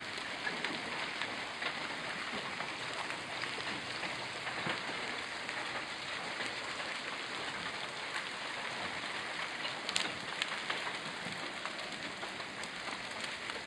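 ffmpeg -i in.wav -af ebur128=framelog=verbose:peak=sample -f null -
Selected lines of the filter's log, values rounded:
Integrated loudness:
  I:         -38.1 LUFS
  Threshold: -48.1 LUFS
Loudness range:
  LRA:         1.3 LU
  Threshold: -57.9 LUFS
  LRA low:   -38.5 LUFS
  LRA high:  -37.2 LUFS
Sample peak:
  Peak:       -9.1 dBFS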